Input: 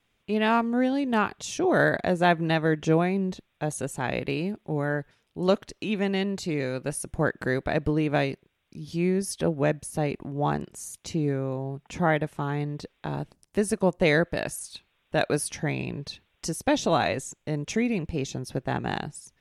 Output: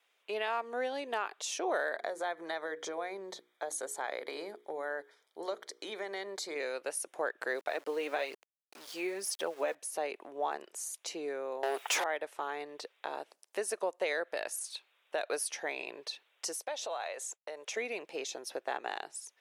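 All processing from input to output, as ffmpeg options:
ffmpeg -i in.wav -filter_complex "[0:a]asettb=1/sr,asplit=3[link_01][link_02][link_03];[link_01]atrim=end=1.954[link_04];[link_02]atrim=start=1.95:end=6.56,asetpts=PTS-STARTPTS,afade=type=in:duration=0.004:curve=qsin,afade=type=out:start_time=4.606:duration=0.004:curve=qsin,acompressor=threshold=-24dB:ratio=6:attack=3.2:release=140:knee=1:detection=peak,asuperstop=centerf=2700:order=4:qfactor=3.9,bandreject=frequency=60:width_type=h:width=6,bandreject=frequency=120:width_type=h:width=6,bandreject=frequency=180:width_type=h:width=6,bandreject=frequency=240:width_type=h:width=6,bandreject=frequency=300:width_type=h:width=6,bandreject=frequency=360:width_type=h:width=6,bandreject=frequency=420:width_type=h:width=6,bandreject=frequency=480:width_type=h:width=6[link_05];[link_03]atrim=start=6.556[link_06];[link_04][link_05]acrossfade=duration=0.004:curve1=hsin:curve2=qsin[link_07];[link_07][link_06]acrossfade=duration=0.004:curve1=qsin:curve2=hsin,asettb=1/sr,asplit=3[link_08][link_09][link_10];[link_08]atrim=end=7.514[link_11];[link_09]atrim=start=7.51:end=9.75,asetpts=PTS-STARTPTS,afade=type=in:duration=0.004:curve=qsin,afade=type=out:start_time=2.236:duration=0.004:curve=qsin,aphaser=in_gain=1:out_gain=1:delay=4.3:decay=0.44:speed=1.1:type=sinusoidal,aeval=exprs='val(0)*gte(abs(val(0)),0.00668)':channel_layout=same[link_12];[link_10]atrim=start=9.746[link_13];[link_11][link_12]acrossfade=duration=0.004:curve1=hsin:curve2=qsin[link_14];[link_14][link_13]acrossfade=duration=0.004:curve1=qsin:curve2=hsin,asettb=1/sr,asplit=3[link_15][link_16][link_17];[link_15]atrim=end=11.634[link_18];[link_16]atrim=start=11.63:end=12.04,asetpts=PTS-STARTPTS,afade=type=in:duration=0.004:curve=qsin,afade=type=out:start_time=0.406:duration=0.004:curve=qsin,highpass=250,aemphasis=mode=production:type=50kf,asplit=2[link_19][link_20];[link_20]highpass=frequency=720:poles=1,volume=32dB,asoftclip=type=tanh:threshold=-12dB[link_21];[link_19][link_21]amix=inputs=2:normalize=0,lowpass=frequency=6500:poles=1,volume=-6dB[link_22];[link_17]atrim=start=12.036[link_23];[link_18][link_22]acrossfade=duration=0.004:curve1=hsin:curve2=qsin[link_24];[link_24][link_23]acrossfade=duration=0.004:curve1=qsin:curve2=hsin,asettb=1/sr,asplit=3[link_25][link_26][link_27];[link_25]atrim=end=16.574[link_28];[link_26]atrim=start=16.57:end=17.77,asetpts=PTS-STARTPTS,afade=type=in:duration=0.004:curve=qsin,afade=type=out:start_time=1.196:duration=0.004:curve=qsin,agate=range=-33dB:threshold=-43dB:ratio=3:release=100:detection=peak,lowshelf=frequency=420:width_type=q:width=1.5:gain=-7,acompressor=threshold=-35dB:ratio=3:attack=3.2:release=140:knee=1:detection=peak[link_29];[link_27]atrim=start=17.766[link_30];[link_28][link_29]acrossfade=duration=0.004:curve1=hsin:curve2=qsin[link_31];[link_31][link_30]acrossfade=duration=0.004:curve1=qsin:curve2=hsin,highpass=frequency=460:width=0.5412,highpass=frequency=460:width=1.3066,alimiter=limit=-17.5dB:level=0:latency=1:release=123,acompressor=threshold=-38dB:ratio=1.5" out.wav

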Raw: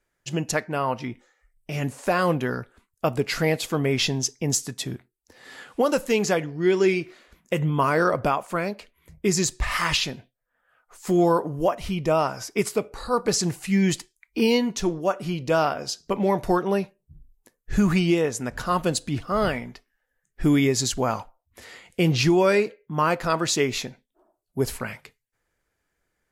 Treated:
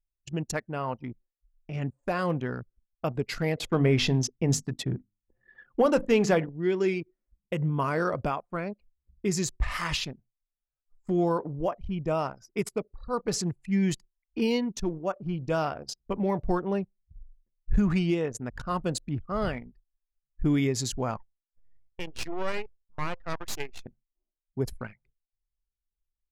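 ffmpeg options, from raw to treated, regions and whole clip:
ffmpeg -i in.wav -filter_complex "[0:a]asettb=1/sr,asplit=3[link_01][link_02][link_03];[link_01]atrim=end=3.574[link_04];[link_02]atrim=start=3.57:end=6.49,asetpts=PTS-STARTPTS,afade=type=in:duration=0.004:curve=qsin,afade=type=out:start_time=2.916:duration=0.004:curve=qsin,highshelf=frequency=4800:gain=-10,bandreject=frequency=50:width_type=h:width=6,bandreject=frequency=100:width_type=h:width=6,bandreject=frequency=150:width_type=h:width=6,bandreject=frequency=200:width_type=h:width=6,bandreject=frequency=250:width_type=h:width=6,bandreject=frequency=300:width_type=h:width=6,acontrast=74[link_05];[link_03]atrim=start=6.486[link_06];[link_04][link_05]acrossfade=duration=0.004:curve1=hsin:curve2=qsin[link_07];[link_07][link_06]acrossfade=duration=0.004:curve1=qsin:curve2=hsin,asettb=1/sr,asplit=3[link_08][link_09][link_10];[link_08]atrim=end=15.264[link_11];[link_09]atrim=start=15.26:end=17.79,asetpts=PTS-STARTPTS,afade=type=in:duration=0.004:curve=qsin,afade=type=out:start_time=2.526:duration=0.004:curve=qsin,deesser=0.35,lowshelf=frequency=88:gain=6.5[link_12];[link_10]atrim=start=17.786[link_13];[link_11][link_12]acrossfade=duration=0.004:curve1=hsin:curve2=qsin[link_14];[link_14][link_13]acrossfade=duration=0.004:curve1=qsin:curve2=hsin,asettb=1/sr,asplit=3[link_15][link_16][link_17];[link_15]atrim=end=21.174[link_18];[link_16]atrim=start=21.17:end=23.86,asetpts=PTS-STARTPTS,afade=type=in:duration=0.004:curve=qsin,afade=type=out:start_time=2.686:duration=0.004:curve=qsin,highpass=470,aeval=exprs='max(val(0),0)':channel_layout=same[link_19];[link_17]atrim=start=23.856[link_20];[link_18][link_19]acrossfade=duration=0.004:curve1=hsin:curve2=qsin[link_21];[link_21][link_20]acrossfade=duration=0.004:curve1=qsin:curve2=hsin,anlmdn=39.8,lowshelf=frequency=170:gain=7.5,volume=-7.5dB" out.wav

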